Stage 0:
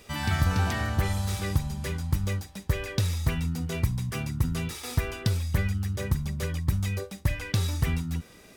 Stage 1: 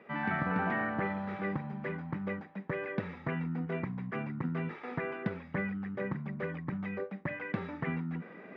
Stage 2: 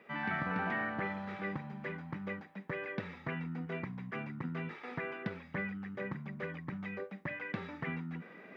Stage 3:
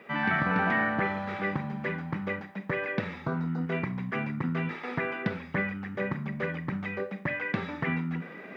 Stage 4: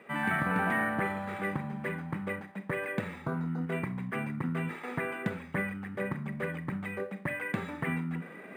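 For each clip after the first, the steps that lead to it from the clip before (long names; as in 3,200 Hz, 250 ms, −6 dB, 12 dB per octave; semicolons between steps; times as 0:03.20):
elliptic band-pass filter 180–2,000 Hz, stop band 70 dB; reversed playback; upward compression, threshold −41 dBFS; reversed playback
high-shelf EQ 2,500 Hz +11 dB; level −5 dB
healed spectral selection 0:03.28–0:03.61, 1,600–3,600 Hz both; four-comb reverb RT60 0.43 s, combs from 28 ms, DRR 12.5 dB; level +8.5 dB
linearly interpolated sample-rate reduction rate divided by 4×; level −2.5 dB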